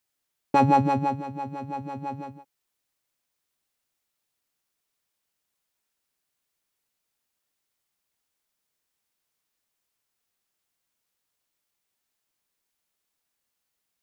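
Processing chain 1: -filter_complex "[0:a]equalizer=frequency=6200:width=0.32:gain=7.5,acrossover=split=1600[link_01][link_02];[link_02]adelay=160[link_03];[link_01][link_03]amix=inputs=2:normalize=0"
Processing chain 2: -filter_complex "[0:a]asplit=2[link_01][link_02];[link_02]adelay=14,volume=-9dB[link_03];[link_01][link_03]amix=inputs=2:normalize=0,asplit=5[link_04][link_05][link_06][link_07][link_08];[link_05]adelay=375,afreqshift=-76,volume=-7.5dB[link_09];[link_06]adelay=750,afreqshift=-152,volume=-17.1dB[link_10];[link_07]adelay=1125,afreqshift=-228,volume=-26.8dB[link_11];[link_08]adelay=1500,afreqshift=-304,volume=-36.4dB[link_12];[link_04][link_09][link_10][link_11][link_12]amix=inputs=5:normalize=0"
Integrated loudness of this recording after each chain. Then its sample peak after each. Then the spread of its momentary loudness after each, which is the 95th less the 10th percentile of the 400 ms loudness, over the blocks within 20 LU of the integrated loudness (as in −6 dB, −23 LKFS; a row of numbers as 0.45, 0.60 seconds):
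−25.5, −24.5 LKFS; −6.5, −6.0 dBFS; 16, 18 LU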